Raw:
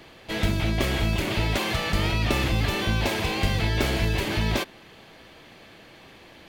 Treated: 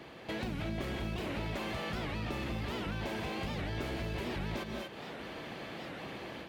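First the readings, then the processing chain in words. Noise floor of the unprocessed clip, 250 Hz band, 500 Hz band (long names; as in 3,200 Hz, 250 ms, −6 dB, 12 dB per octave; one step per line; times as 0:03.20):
−50 dBFS, −9.5 dB, −9.5 dB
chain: reverb whose tail is shaped and stops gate 260 ms rising, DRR 8.5 dB
automatic gain control gain up to 7 dB
high-pass filter 66 Hz
soft clipping −12 dBFS, distortion −18 dB
parametric band 95 Hz −7.5 dB 0.34 octaves
downward compressor 6 to 1, threshold −35 dBFS, peak gain reduction 17 dB
high-shelf EQ 2,700 Hz −9 dB
wow of a warped record 78 rpm, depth 250 cents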